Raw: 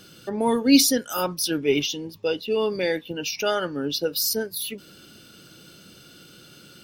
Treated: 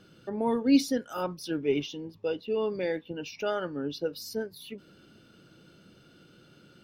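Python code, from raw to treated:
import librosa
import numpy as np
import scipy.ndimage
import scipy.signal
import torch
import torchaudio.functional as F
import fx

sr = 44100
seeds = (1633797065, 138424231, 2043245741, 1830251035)

y = fx.lowpass(x, sr, hz=1500.0, slope=6)
y = y * 10.0 ** (-5.0 / 20.0)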